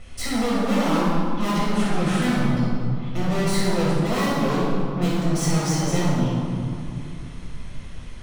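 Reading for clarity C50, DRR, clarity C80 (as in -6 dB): -3.0 dB, -9.0 dB, -0.5 dB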